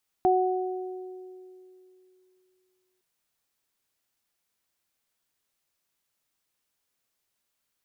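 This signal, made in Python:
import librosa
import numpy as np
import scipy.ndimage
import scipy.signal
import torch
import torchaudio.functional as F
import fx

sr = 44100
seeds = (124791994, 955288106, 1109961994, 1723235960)

y = fx.additive(sr, length_s=2.76, hz=370.0, level_db=-20.5, upper_db=(1.5,), decay_s=2.93, upper_decays_s=(1.6,))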